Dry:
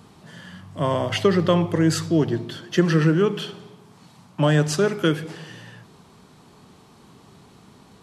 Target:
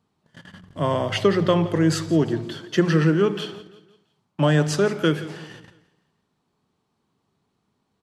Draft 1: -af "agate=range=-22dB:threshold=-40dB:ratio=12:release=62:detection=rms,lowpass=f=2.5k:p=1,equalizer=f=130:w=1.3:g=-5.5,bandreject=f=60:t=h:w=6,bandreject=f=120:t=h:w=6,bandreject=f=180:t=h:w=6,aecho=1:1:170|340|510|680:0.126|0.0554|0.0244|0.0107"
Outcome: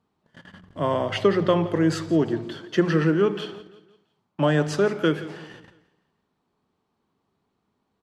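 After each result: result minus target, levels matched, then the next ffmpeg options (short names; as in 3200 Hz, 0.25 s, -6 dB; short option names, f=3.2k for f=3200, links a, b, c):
8000 Hz band -5.0 dB; 125 Hz band -2.5 dB
-af "agate=range=-22dB:threshold=-40dB:ratio=12:release=62:detection=rms,lowpass=f=8k:p=1,equalizer=f=130:w=1.3:g=-5.5,bandreject=f=60:t=h:w=6,bandreject=f=120:t=h:w=6,bandreject=f=180:t=h:w=6,aecho=1:1:170|340|510|680:0.126|0.0554|0.0244|0.0107"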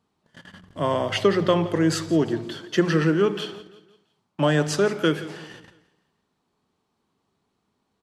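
125 Hz band -3.0 dB
-af "agate=range=-22dB:threshold=-40dB:ratio=12:release=62:detection=rms,lowpass=f=8k:p=1,bandreject=f=60:t=h:w=6,bandreject=f=120:t=h:w=6,bandreject=f=180:t=h:w=6,aecho=1:1:170|340|510|680:0.126|0.0554|0.0244|0.0107"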